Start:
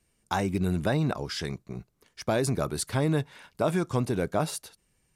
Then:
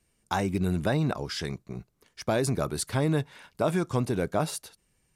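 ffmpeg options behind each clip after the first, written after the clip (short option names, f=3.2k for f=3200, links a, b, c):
-af anull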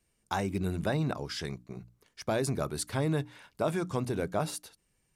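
-af "bandreject=f=60:t=h:w=6,bandreject=f=120:t=h:w=6,bandreject=f=180:t=h:w=6,bandreject=f=240:t=h:w=6,bandreject=f=300:t=h:w=6,volume=-3.5dB"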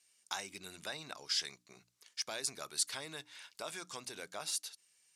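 -af "acompressor=threshold=-46dB:ratio=1.5,bandpass=f=5.7k:t=q:w=0.86:csg=0,volume=10.5dB"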